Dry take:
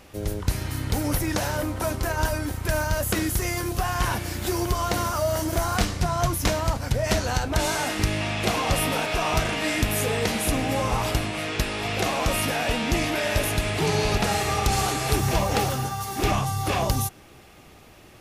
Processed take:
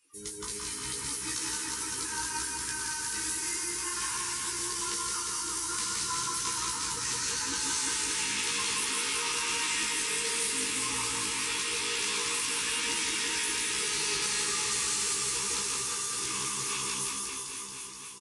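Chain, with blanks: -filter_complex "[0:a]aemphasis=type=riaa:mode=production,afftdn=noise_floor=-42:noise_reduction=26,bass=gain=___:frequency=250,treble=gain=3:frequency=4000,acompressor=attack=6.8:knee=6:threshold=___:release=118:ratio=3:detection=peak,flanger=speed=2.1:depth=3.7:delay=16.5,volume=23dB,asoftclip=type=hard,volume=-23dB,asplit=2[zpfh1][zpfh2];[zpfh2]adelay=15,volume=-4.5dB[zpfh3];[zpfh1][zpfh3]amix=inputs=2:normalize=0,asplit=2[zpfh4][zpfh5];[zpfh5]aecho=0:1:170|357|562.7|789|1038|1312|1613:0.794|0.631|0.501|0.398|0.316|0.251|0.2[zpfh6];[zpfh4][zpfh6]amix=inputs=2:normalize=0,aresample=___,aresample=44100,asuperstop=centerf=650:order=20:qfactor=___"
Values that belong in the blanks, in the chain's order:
-3, -33dB, 22050, 1.8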